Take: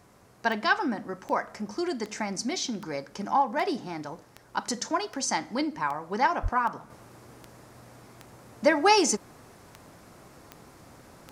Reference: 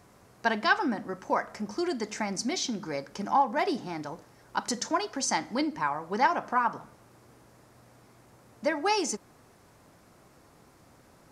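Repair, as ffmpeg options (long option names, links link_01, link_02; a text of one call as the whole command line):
ffmpeg -i in.wav -filter_complex "[0:a]adeclick=threshold=4,asplit=3[link_01][link_02][link_03];[link_01]afade=type=out:start_time=6.42:duration=0.02[link_04];[link_02]highpass=frequency=140:width=0.5412,highpass=frequency=140:width=1.3066,afade=type=in:start_time=6.42:duration=0.02,afade=type=out:start_time=6.54:duration=0.02[link_05];[link_03]afade=type=in:start_time=6.54:duration=0.02[link_06];[link_04][link_05][link_06]amix=inputs=3:normalize=0,asetnsamples=nb_out_samples=441:pad=0,asendcmd='6.9 volume volume -6.5dB',volume=0dB" out.wav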